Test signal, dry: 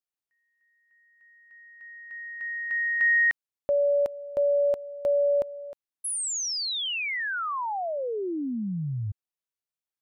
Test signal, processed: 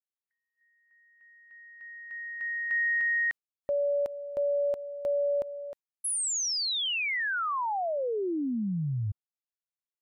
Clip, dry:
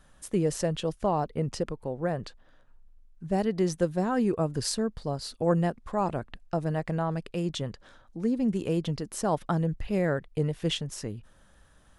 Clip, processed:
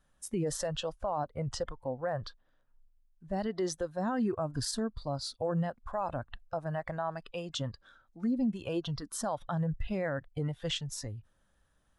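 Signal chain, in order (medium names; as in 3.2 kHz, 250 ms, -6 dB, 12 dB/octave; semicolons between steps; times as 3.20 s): spectral noise reduction 13 dB; peak limiter -24 dBFS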